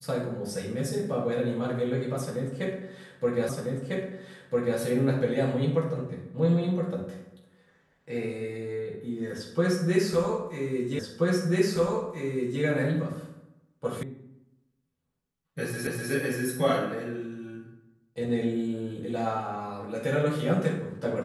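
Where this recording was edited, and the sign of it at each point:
3.49 s: repeat of the last 1.3 s
10.99 s: repeat of the last 1.63 s
14.03 s: sound stops dead
15.87 s: repeat of the last 0.25 s

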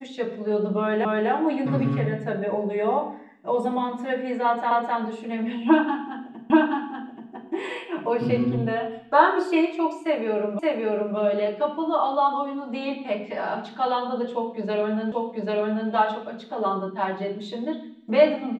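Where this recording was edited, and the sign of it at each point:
1.05 s: repeat of the last 0.25 s
4.71 s: repeat of the last 0.26 s
6.50 s: repeat of the last 0.83 s
10.59 s: repeat of the last 0.57 s
15.12 s: repeat of the last 0.79 s

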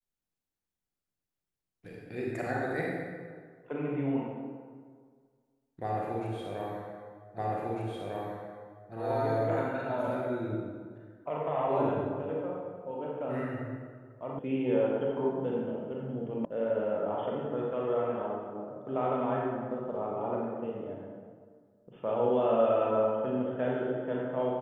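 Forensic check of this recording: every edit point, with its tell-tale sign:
7.38 s: repeat of the last 1.55 s
14.39 s: sound stops dead
16.45 s: sound stops dead

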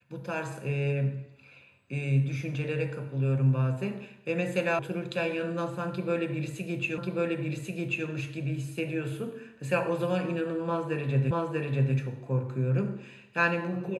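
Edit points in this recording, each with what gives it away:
4.79 s: sound stops dead
6.98 s: repeat of the last 1.09 s
11.31 s: repeat of the last 0.64 s

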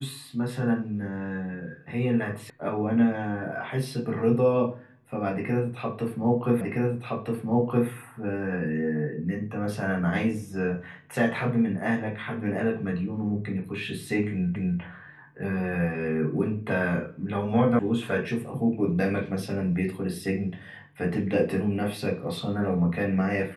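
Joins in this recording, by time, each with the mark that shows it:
2.50 s: sound stops dead
6.61 s: repeat of the last 1.27 s
14.56 s: repeat of the last 0.25 s
17.79 s: sound stops dead

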